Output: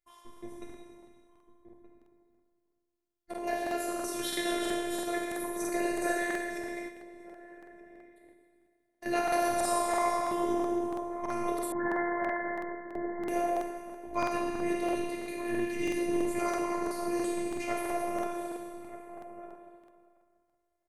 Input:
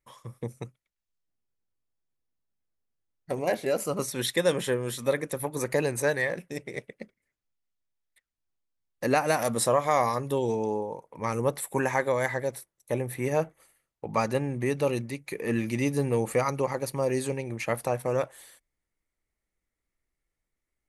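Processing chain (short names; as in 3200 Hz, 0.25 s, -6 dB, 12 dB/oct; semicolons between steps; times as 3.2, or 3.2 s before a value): plate-style reverb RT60 2.1 s, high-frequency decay 0.95×, DRR -4 dB; robotiser 348 Hz; outdoor echo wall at 210 m, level -12 dB; 6.88–9.06 compressor 6:1, threshold -38 dBFS, peak gain reduction 9 dB; 11.72–13.27 Chebyshev low-pass 2100 Hz, order 10; crackling interface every 0.33 s, samples 2048, repeat, from 0.32; gain -6.5 dB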